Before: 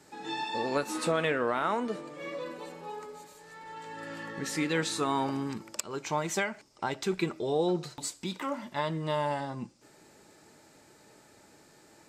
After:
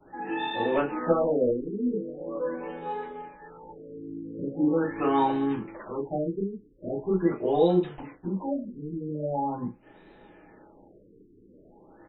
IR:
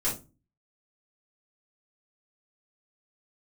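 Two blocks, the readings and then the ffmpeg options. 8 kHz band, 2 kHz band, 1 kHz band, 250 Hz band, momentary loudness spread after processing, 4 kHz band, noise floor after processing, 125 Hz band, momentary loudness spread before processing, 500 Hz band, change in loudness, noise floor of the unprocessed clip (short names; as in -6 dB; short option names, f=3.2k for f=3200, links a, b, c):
under -40 dB, -4.5 dB, +2.0 dB, +6.5 dB, 16 LU, -6.0 dB, -56 dBFS, +2.5 dB, 14 LU, +5.5 dB, +4.0 dB, -59 dBFS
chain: -filter_complex "[0:a]asplit=2[a][b];[b]adelay=36,volume=-12.5dB[c];[a][c]amix=inputs=2:normalize=0[d];[1:a]atrim=start_sample=2205,afade=t=out:st=0.17:d=0.01,atrim=end_sample=7938,asetrate=74970,aresample=44100[e];[d][e]afir=irnorm=-1:irlink=0,afftfilt=real='re*lt(b*sr/1024,460*pow(4100/460,0.5+0.5*sin(2*PI*0.42*pts/sr)))':imag='im*lt(b*sr/1024,460*pow(4100/460,0.5+0.5*sin(2*PI*0.42*pts/sr)))':win_size=1024:overlap=0.75"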